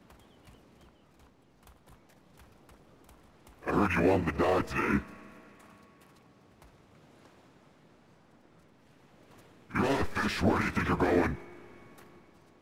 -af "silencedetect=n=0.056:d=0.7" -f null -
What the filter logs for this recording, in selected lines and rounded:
silence_start: 0.00
silence_end: 3.68 | silence_duration: 3.68
silence_start: 4.98
silence_end: 9.75 | silence_duration: 4.77
silence_start: 11.31
silence_end: 12.61 | silence_duration: 1.31